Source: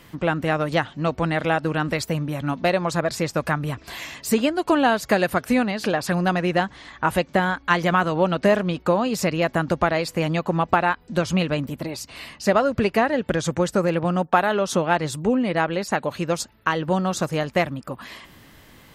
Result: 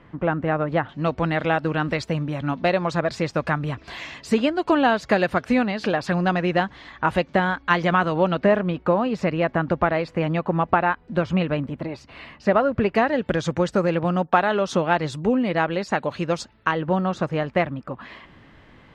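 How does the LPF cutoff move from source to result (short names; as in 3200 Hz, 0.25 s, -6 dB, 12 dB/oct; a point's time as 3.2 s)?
1700 Hz
from 0.89 s 4300 Hz
from 8.42 s 2400 Hz
from 12.95 s 4700 Hz
from 16.71 s 2600 Hz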